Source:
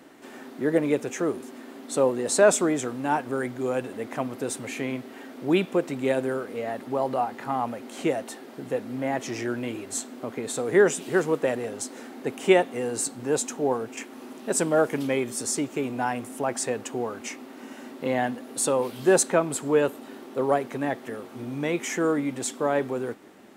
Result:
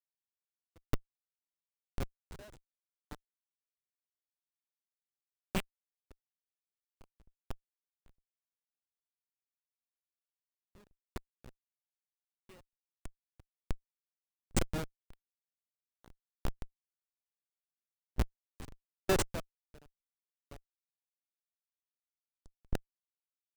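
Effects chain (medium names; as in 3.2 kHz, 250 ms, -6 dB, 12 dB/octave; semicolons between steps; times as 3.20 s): high-pass 550 Hz 12 dB/octave; peaking EQ 2.8 kHz +11.5 dB 0.3 oct; Schmitt trigger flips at -17.5 dBFS; sawtooth tremolo in dB decaying 1.1 Hz, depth 40 dB; trim +6 dB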